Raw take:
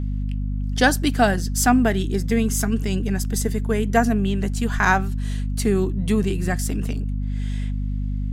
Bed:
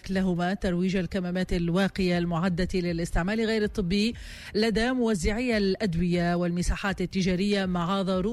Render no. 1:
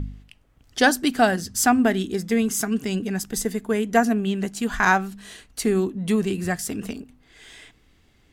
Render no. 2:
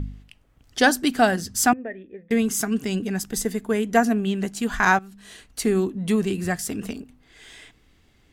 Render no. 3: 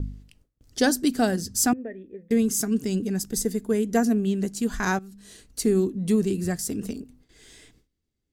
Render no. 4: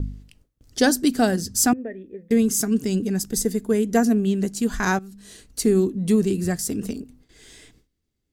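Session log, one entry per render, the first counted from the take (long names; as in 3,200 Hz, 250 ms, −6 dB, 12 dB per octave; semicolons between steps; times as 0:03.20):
hum removal 50 Hz, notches 5
0:01.73–0:02.31: formant resonators in series e; 0:04.99–0:05.45: fade in, from −16 dB
noise gate with hold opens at −47 dBFS; flat-topped bell 1,500 Hz −9 dB 2.7 octaves
level +3 dB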